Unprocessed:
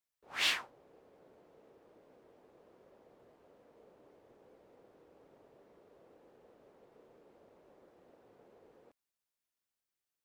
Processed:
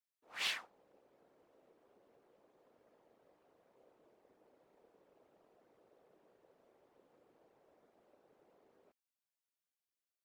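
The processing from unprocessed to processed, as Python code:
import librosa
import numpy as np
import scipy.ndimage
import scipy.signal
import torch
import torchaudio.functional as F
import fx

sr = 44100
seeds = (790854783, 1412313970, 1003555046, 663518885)

y = fx.highpass(x, sr, hz=290.0, slope=6)
y = fx.whisperise(y, sr, seeds[0])
y = y * 10.0 ** (-6.0 / 20.0)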